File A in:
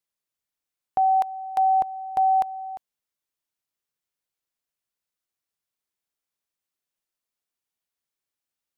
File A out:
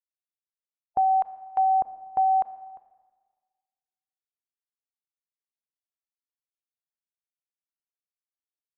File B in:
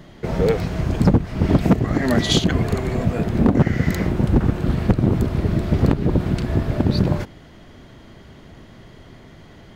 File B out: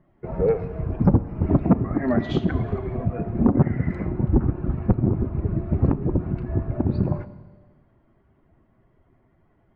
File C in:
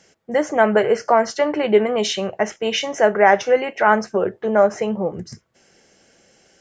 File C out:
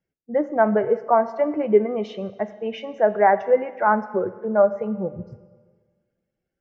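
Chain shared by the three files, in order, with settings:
expander on every frequency bin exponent 1.5; low-pass 1.3 kHz 12 dB/octave; Schroeder reverb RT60 1.5 s, combs from 27 ms, DRR 13.5 dB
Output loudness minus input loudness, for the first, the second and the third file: -2.0 LU, -4.0 LU, -3.0 LU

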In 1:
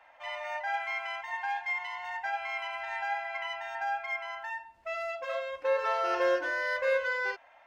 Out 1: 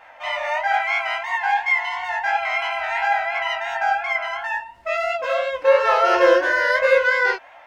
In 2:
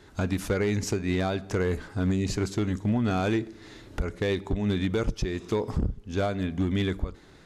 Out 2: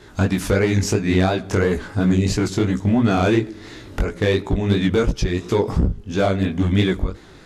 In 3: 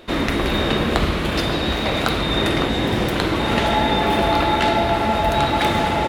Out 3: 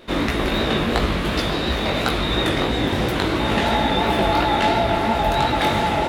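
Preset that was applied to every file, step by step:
vibrato 5.5 Hz 20 cents; chorus 2.9 Hz, delay 16 ms, depth 6.2 ms; normalise loudness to -20 LUFS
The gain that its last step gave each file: +15.0 dB, +11.5 dB, +2.0 dB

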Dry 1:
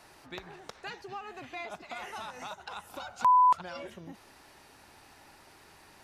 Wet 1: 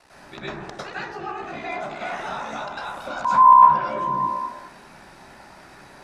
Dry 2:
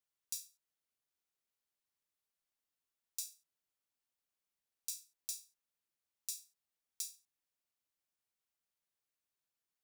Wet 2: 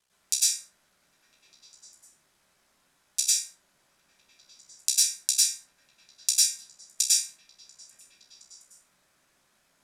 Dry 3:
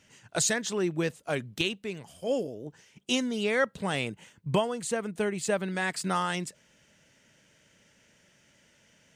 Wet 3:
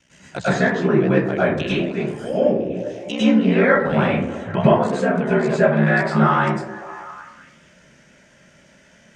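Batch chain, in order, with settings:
low-pass that closes with the level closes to 2.4 kHz, closed at -27 dBFS; low-pass 10 kHz 12 dB/octave; ring modulator 32 Hz; repeats whose band climbs or falls 201 ms, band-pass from 310 Hz, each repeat 0.7 oct, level -9 dB; plate-style reverb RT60 0.65 s, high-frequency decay 0.35×, pre-delay 90 ms, DRR -10 dB; peak normalisation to -1.5 dBFS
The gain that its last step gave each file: +3.0 dB, +20.5 dB, +4.0 dB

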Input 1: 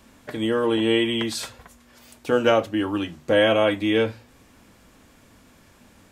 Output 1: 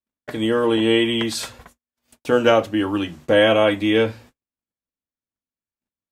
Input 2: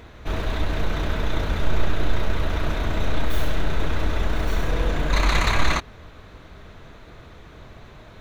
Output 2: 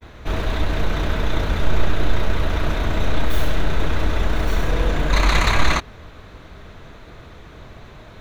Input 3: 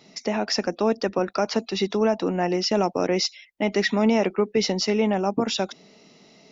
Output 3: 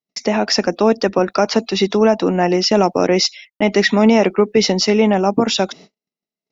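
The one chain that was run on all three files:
gate -46 dBFS, range -49 dB; peak normalisation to -3 dBFS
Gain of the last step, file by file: +3.0 dB, +3.0 dB, +8.0 dB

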